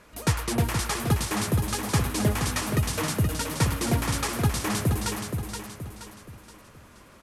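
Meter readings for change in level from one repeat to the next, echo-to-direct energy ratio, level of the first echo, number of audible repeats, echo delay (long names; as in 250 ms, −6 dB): −7.5 dB, −5.0 dB, −6.0 dB, 4, 474 ms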